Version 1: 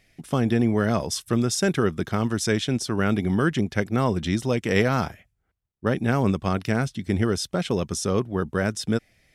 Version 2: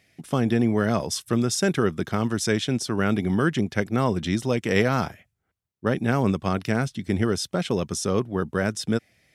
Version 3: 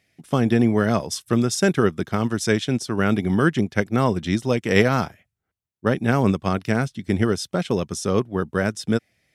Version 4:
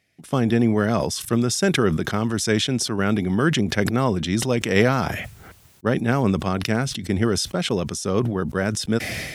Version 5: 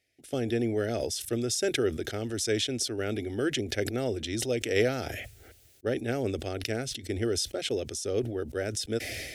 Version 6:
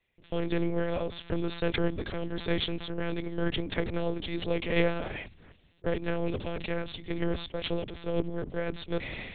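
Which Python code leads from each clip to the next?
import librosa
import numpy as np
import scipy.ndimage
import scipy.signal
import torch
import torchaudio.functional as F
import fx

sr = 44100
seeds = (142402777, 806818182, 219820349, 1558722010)

y1 = scipy.signal.sosfilt(scipy.signal.butter(2, 85.0, 'highpass', fs=sr, output='sos'), x)
y2 = fx.upward_expand(y1, sr, threshold_db=-36.0, expansion=1.5)
y2 = F.gain(torch.from_numpy(y2), 5.0).numpy()
y3 = fx.sustainer(y2, sr, db_per_s=43.0)
y3 = F.gain(torch.from_numpy(y3), -1.5).numpy()
y4 = fx.fixed_phaser(y3, sr, hz=430.0, stages=4)
y4 = F.gain(torch.from_numpy(y4), -5.0).numpy()
y5 = np.where(y4 < 0.0, 10.0 ** (-7.0 / 20.0) * y4, y4)
y5 = fx.lpc_monotone(y5, sr, seeds[0], pitch_hz=170.0, order=8)
y5 = F.gain(torch.from_numpy(y5), 2.0).numpy()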